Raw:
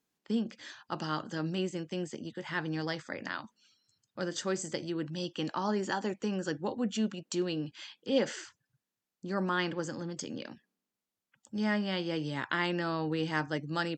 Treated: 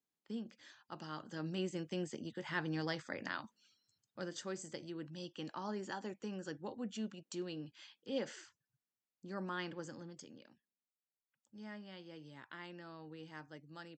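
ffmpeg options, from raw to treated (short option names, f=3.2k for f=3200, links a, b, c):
-af "volume=-4dB,afade=t=in:st=1.13:d=0.69:silence=0.398107,afade=t=out:st=3.44:d=1.06:silence=0.473151,afade=t=out:st=9.93:d=0.5:silence=0.375837"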